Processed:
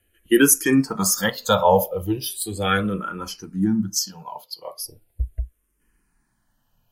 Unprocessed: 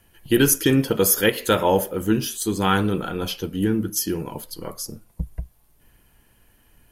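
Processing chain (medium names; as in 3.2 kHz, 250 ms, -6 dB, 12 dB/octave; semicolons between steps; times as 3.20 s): spectral noise reduction 12 dB; 3.97–4.80 s: frequency weighting A; barber-pole phaser -0.38 Hz; trim +5 dB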